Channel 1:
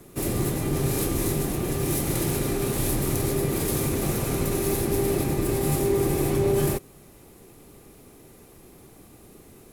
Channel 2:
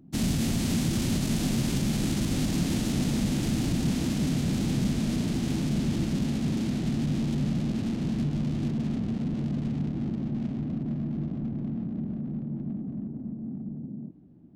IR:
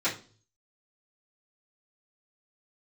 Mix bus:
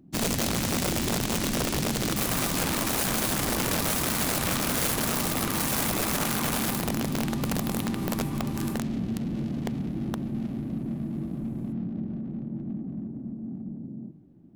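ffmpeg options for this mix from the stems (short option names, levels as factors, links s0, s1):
-filter_complex "[0:a]highpass=f=1000:t=q:w=3.4,adelay=2000,volume=0.631,afade=t=out:st=6.58:d=0.34:silence=0.281838,asplit=2[s0][s1];[s1]volume=0.211[s2];[1:a]volume=0.944,asplit=2[s3][s4];[s4]volume=0.106[s5];[2:a]atrim=start_sample=2205[s6];[s2][s5]amix=inputs=2:normalize=0[s7];[s7][s6]afir=irnorm=-1:irlink=0[s8];[s0][s3][s8]amix=inputs=3:normalize=0,bandreject=f=50:t=h:w=6,bandreject=f=100:t=h:w=6,bandreject=f=150:t=h:w=6,aeval=exprs='(mod(11.2*val(0)+1,2)-1)/11.2':c=same"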